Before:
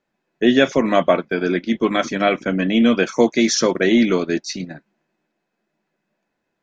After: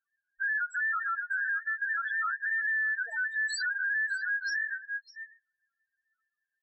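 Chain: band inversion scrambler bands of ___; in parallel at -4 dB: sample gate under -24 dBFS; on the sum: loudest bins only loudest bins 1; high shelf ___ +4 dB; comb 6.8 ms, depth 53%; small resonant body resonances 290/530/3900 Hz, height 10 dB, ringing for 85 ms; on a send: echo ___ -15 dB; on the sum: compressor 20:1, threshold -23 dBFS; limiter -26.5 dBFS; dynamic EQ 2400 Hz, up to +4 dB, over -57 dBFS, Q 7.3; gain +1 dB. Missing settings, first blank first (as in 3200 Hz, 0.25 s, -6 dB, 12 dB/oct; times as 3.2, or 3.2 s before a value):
2000 Hz, 5700 Hz, 0.604 s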